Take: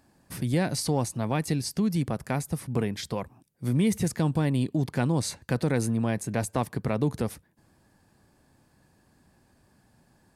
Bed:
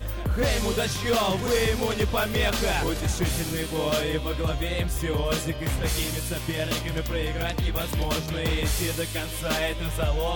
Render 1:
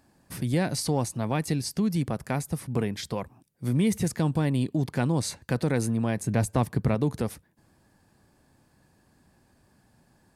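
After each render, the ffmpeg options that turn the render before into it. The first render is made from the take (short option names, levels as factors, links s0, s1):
-filter_complex "[0:a]asettb=1/sr,asplit=3[s0][s1][s2];[s0]atrim=end=6.204[s3];[s1]atrim=start=6.2:end=6.95,asetpts=PTS-STARTPTS,afade=t=in:d=0.004:c=qsin,afade=t=out:st=0.746:d=0.004:c=qsin,lowshelf=f=210:g=8[s4];[s2]atrim=start=6.946[s5];[s3][s4]acrossfade=d=0.004:c1=hsin:c2=qsin[s6];[s6][s5]acrossfade=d=0.004:c1=qsin:c2=hsin"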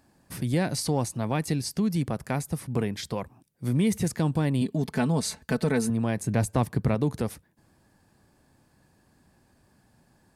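-filter_complex "[0:a]asettb=1/sr,asplit=3[s0][s1][s2];[s0]atrim=end=4.614[s3];[s1]atrim=start=4.61:end=5.9,asetpts=PTS-STARTPTS,afade=t=in:d=0.004:c=qsin,afade=t=out:st=1.286:d=0.004:c=qsin,aecho=1:1:4.6:0.65,atrim=end_sample=56889[s4];[s2]atrim=start=5.896[s5];[s3][s4]acrossfade=d=0.004:c1=hsin:c2=qsin[s6];[s6][s5]acrossfade=d=0.004:c1=qsin:c2=hsin"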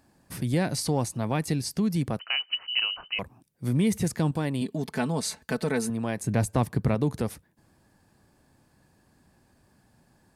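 -filter_complex "[0:a]asettb=1/sr,asplit=3[s0][s1][s2];[s0]atrim=end=2.194[s3];[s1]atrim=start=2.19:end=3.19,asetpts=PTS-STARTPTS,afade=t=in:d=0.004:c=qsin,afade=t=out:st=0.996:d=0.004:c=qsin,lowpass=f=2600:t=q:w=0.5098,lowpass=f=2600:t=q:w=0.6013,lowpass=f=2600:t=q:w=0.9,lowpass=f=2600:t=q:w=2.563,afreqshift=-3100[s4];[s2]atrim=start=3.186[s5];[s3][s4]acrossfade=d=0.004:c1=hsin:c2=qsin[s6];[s6][s5]acrossfade=d=0.004:c1=qsin:c2=hsin,asettb=1/sr,asplit=3[s7][s8][s9];[s7]atrim=end=4.314[s10];[s8]atrim=start=4.31:end=6.24,asetpts=PTS-STARTPTS,afade=t=in:d=0.004:c=qsin,afade=t=out:st=1.926:d=0.004:c=qsin,lowshelf=f=190:g=-8[s11];[s9]atrim=start=6.236[s12];[s10][s11]acrossfade=d=0.004:c1=hsin:c2=qsin[s13];[s13][s12]acrossfade=d=0.004:c1=qsin:c2=hsin"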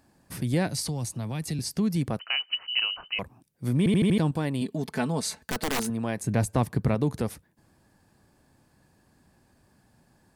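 -filter_complex "[0:a]asettb=1/sr,asplit=3[s0][s1][s2];[s0]atrim=end=0.674[s3];[s1]atrim=start=0.67:end=1.59,asetpts=PTS-STARTPTS,afade=t=in:d=0.004:c=qsin,afade=t=out:st=0.916:d=0.004:c=qsin,acrossover=split=170|3000[s4][s5][s6];[s5]acompressor=threshold=0.0126:ratio=3:attack=3.2:release=140:knee=2.83:detection=peak[s7];[s4][s7][s6]amix=inputs=3:normalize=0[s8];[s2]atrim=start=1.586[s9];[s3][s8]acrossfade=d=0.004:c1=hsin:c2=qsin[s10];[s10][s9]acrossfade=d=0.004:c1=qsin:c2=hsin,asettb=1/sr,asplit=3[s11][s12][s13];[s11]atrim=end=5.424[s14];[s12]atrim=start=5.42:end=5.88,asetpts=PTS-STARTPTS,afade=t=in:d=0.004:c=qsin,afade=t=out:st=0.456:d=0.004:c=qsin,aeval=exprs='(mod(11.2*val(0)+1,2)-1)/11.2':c=same[s15];[s13]atrim=start=5.876[s16];[s14][s15]acrossfade=d=0.004:c1=hsin:c2=qsin[s17];[s17][s16]acrossfade=d=0.004:c1=qsin:c2=hsin,asplit=6[s18][s19][s20][s21][s22][s23];[s18]atrim=end=3.862[s24];[s19]atrim=start=3.778:end=3.862[s25];[s20]atrim=start=3.778:end=3.862[s26];[s21]atrim=start=3.778:end=3.862[s27];[s22]atrim=start=3.778:end=3.862[s28];[s23]atrim=start=4.178[s29];[s24][s25]acrossfade=d=0.004:c1=hsin:c2=hsin[s30];[s30][s26]acrossfade=d=0.004:c1=hsin:c2=hsin[s31];[s31][s27]acrossfade=d=0.004:c1=hsin:c2=hsin[s32];[s32][s28]acrossfade=d=0.004:c1=hsin:c2=hsin[s33];[s33][s29]acrossfade=d=0.004:c1=hsin:c2=hsin"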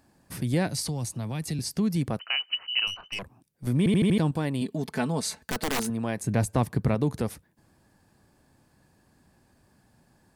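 -filter_complex "[0:a]asettb=1/sr,asplit=3[s0][s1][s2];[s0]atrim=end=2.874[s3];[s1]atrim=start=2.87:end=3.67,asetpts=PTS-STARTPTS,afade=t=in:d=0.004:c=qsin,afade=t=out:st=0.796:d=0.004:c=qsin,aeval=exprs='(tanh(22.4*val(0)+0.5)-tanh(0.5))/22.4':c=same[s4];[s2]atrim=start=3.666[s5];[s3][s4]acrossfade=d=0.004:c1=hsin:c2=qsin[s6];[s6][s5]acrossfade=d=0.004:c1=qsin:c2=hsin"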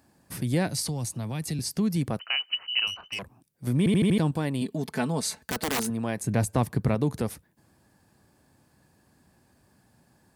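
-af "highpass=51,highshelf=f=9700:g=4"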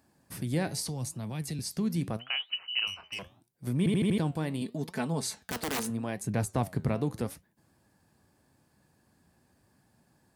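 -af "flanger=delay=4.3:depth=9.1:regen=82:speed=0.8:shape=triangular"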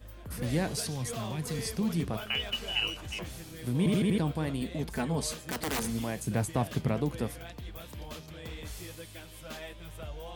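-filter_complex "[1:a]volume=0.15[s0];[0:a][s0]amix=inputs=2:normalize=0"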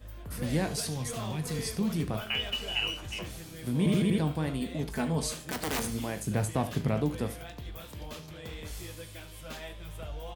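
-filter_complex "[0:a]asplit=2[s0][s1];[s1]adelay=20,volume=0.251[s2];[s0][s2]amix=inputs=2:normalize=0,aecho=1:1:37|74:0.178|0.188"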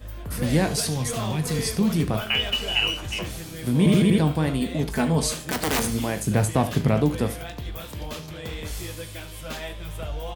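-af "volume=2.51"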